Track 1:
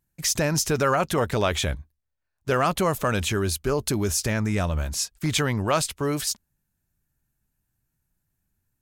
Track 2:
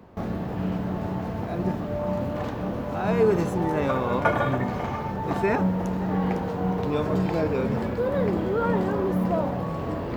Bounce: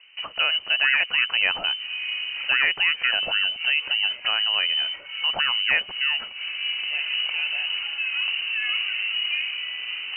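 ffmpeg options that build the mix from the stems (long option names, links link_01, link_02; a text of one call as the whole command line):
ffmpeg -i stem1.wav -i stem2.wav -filter_complex "[0:a]volume=1dB,asplit=2[link_01][link_02];[1:a]volume=-2.5dB[link_03];[link_02]apad=whole_len=448268[link_04];[link_03][link_04]sidechaincompress=threshold=-36dB:ratio=12:attack=20:release=108[link_05];[link_01][link_05]amix=inputs=2:normalize=0,lowpass=frequency=2600:width_type=q:width=0.5098,lowpass=frequency=2600:width_type=q:width=0.6013,lowpass=frequency=2600:width_type=q:width=0.9,lowpass=frequency=2600:width_type=q:width=2.563,afreqshift=-3100" out.wav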